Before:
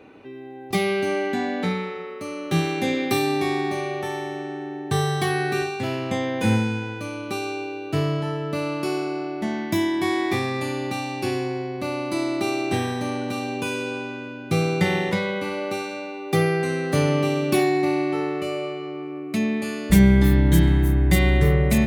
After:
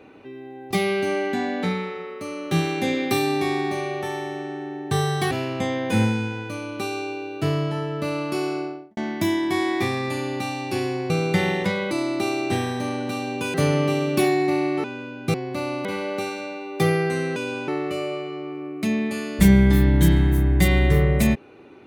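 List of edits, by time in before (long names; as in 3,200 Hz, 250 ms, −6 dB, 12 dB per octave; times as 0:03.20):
0:05.31–0:05.82: remove
0:09.07–0:09.48: fade out and dull
0:11.61–0:12.12: swap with 0:14.57–0:15.38
0:13.75–0:14.07: swap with 0:16.89–0:18.19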